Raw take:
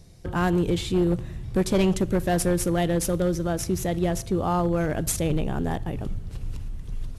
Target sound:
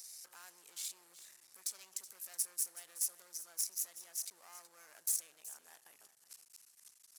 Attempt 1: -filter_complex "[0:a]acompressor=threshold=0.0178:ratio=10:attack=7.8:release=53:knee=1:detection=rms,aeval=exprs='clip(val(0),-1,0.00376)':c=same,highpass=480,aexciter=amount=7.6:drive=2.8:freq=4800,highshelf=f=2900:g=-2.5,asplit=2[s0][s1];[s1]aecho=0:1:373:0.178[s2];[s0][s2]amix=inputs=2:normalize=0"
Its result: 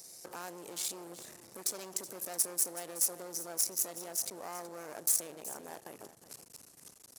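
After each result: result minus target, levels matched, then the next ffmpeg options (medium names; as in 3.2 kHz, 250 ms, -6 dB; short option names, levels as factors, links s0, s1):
500 Hz band +17.5 dB; compression: peak gain reduction -7 dB
-filter_complex "[0:a]acompressor=threshold=0.0178:ratio=10:attack=7.8:release=53:knee=1:detection=rms,aeval=exprs='clip(val(0),-1,0.00376)':c=same,highpass=1600,aexciter=amount=7.6:drive=2.8:freq=4800,highshelf=f=2900:g=-2.5,asplit=2[s0][s1];[s1]aecho=0:1:373:0.178[s2];[s0][s2]amix=inputs=2:normalize=0"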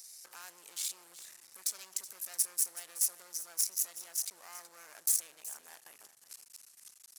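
compression: peak gain reduction -7 dB
-filter_complex "[0:a]acompressor=threshold=0.0075:ratio=10:attack=7.8:release=53:knee=1:detection=rms,aeval=exprs='clip(val(0),-1,0.00376)':c=same,highpass=1600,aexciter=amount=7.6:drive=2.8:freq=4800,highshelf=f=2900:g=-2.5,asplit=2[s0][s1];[s1]aecho=0:1:373:0.178[s2];[s0][s2]amix=inputs=2:normalize=0"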